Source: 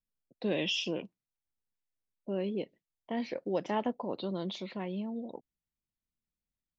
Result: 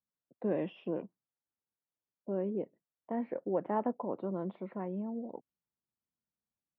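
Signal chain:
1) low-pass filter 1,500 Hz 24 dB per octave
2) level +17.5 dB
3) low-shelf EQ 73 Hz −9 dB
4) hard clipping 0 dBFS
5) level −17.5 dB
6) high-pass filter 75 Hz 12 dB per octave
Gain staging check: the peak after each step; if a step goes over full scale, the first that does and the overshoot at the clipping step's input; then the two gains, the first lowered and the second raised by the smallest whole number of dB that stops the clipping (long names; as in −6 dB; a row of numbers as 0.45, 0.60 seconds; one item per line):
−20.0, −2.5, −2.5, −2.5, −20.0, −20.0 dBFS
no step passes full scale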